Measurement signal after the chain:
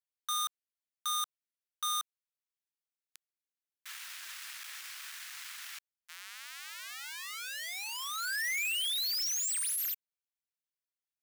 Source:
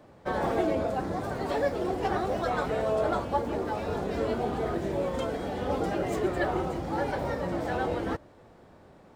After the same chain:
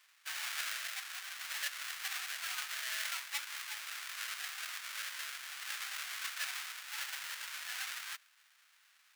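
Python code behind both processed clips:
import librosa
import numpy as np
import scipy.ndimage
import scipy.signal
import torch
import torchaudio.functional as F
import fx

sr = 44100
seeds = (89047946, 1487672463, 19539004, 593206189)

y = fx.halfwave_hold(x, sr)
y = scipy.signal.sosfilt(scipy.signal.butter(4, 1500.0, 'highpass', fs=sr, output='sos'), y)
y = y * librosa.db_to_amplitude(-7.5)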